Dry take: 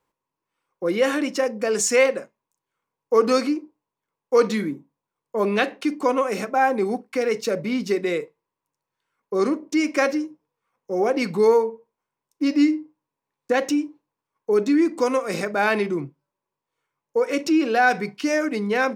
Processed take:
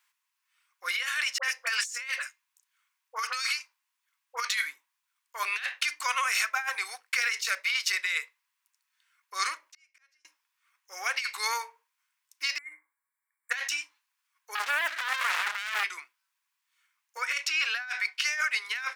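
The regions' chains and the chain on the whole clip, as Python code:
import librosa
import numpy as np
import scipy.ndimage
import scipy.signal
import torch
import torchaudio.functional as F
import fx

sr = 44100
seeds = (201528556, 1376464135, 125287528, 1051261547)

y = fx.chain(x, sr, fx.steep_highpass(hz=450.0, slope=96),
    fx.dispersion(late='highs', ms=54.0, hz=1200.0), at=(1.38, 4.45))
y = fx.chain(y, sr, fx.auto_swell(attack_ms=231.0),
    fx.gate_flip(shuts_db=-35.0, range_db=-37), at=(9.64, 10.25))
y = fx.chain(y, sr, fx.brickwall_bandstop(low_hz=2400.0, high_hz=7200.0),
    fx.over_compress(threshold_db=-21.0, ratio=-0.5),
    fx.comb_fb(f0_hz=560.0, decay_s=0.2, harmonics='all', damping=0.0, mix_pct=70), at=(12.58, 13.51))
y = fx.chain(y, sr, fx.lowpass(hz=1200.0, slope=12),
    fx.leveller(passes=3),
    fx.running_max(window=33), at=(14.55, 15.84))
y = fx.chain(y, sr, fx.highpass(hz=310.0, slope=24),
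    fx.high_shelf(hz=4800.0, db=-6.5), at=(17.17, 18.65))
y = scipy.signal.sosfilt(scipy.signal.butter(4, 1500.0, 'highpass', fs=sr, output='sos'), y)
y = fx.over_compress(y, sr, threshold_db=-36.0, ratio=-1.0)
y = F.gain(torch.from_numpy(y), 6.0).numpy()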